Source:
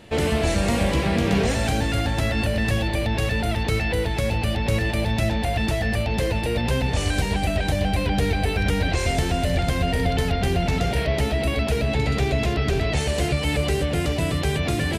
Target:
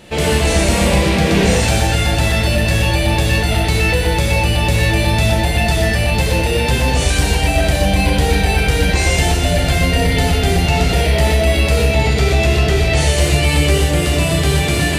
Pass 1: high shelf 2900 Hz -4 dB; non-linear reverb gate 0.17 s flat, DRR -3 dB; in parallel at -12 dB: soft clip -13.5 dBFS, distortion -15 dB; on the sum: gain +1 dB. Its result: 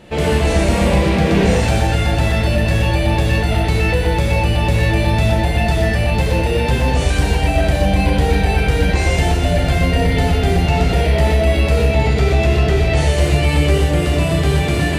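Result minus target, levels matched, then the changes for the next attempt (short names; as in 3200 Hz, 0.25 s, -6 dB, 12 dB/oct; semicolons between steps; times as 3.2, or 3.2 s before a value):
8000 Hz band -7.5 dB
change: high shelf 2900 Hz +5.5 dB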